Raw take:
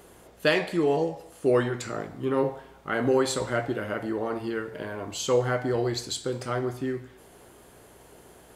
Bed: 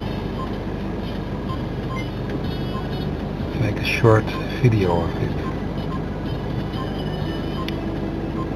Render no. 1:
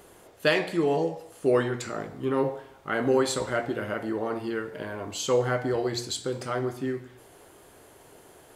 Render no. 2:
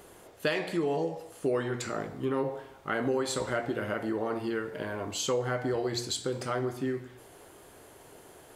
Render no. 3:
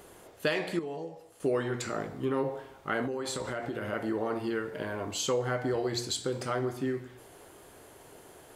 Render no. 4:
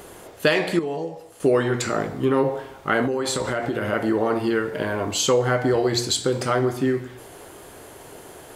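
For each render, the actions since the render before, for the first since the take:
de-hum 60 Hz, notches 9
compression 3:1, threshold -27 dBFS, peak gain reduction 7.5 dB
0.79–1.40 s: gain -8.5 dB; 3.05–3.93 s: compression, threshold -30 dBFS
trim +10 dB

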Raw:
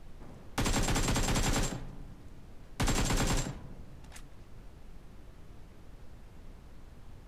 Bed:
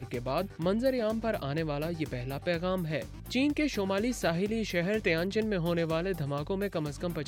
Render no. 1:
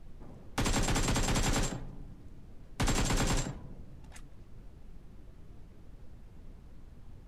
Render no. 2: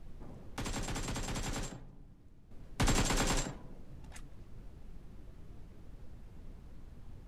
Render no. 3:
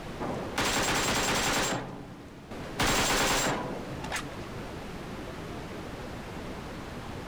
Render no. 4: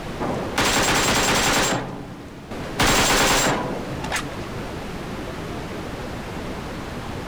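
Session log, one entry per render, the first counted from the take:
noise reduction 6 dB, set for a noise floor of -53 dBFS
0.57–2.51 s: gain -8.5 dB; 3.02–3.90 s: peaking EQ 83 Hz -7.5 dB 2.2 oct
overdrive pedal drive 34 dB, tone 4.1 kHz, clips at -18.5 dBFS
trim +8.5 dB

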